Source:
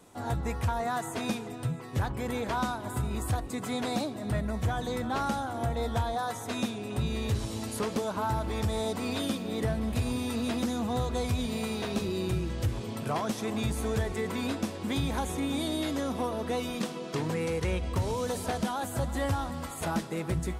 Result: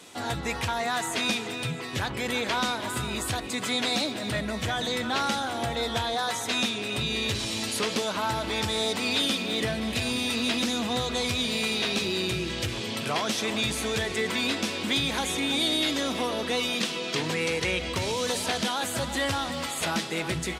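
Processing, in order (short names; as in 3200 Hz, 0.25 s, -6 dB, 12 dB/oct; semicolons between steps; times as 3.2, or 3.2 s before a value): weighting filter D; in parallel at -1.5 dB: limiter -31 dBFS, peak gain reduction 16.5 dB; on the sum: speakerphone echo 0.33 s, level -9 dB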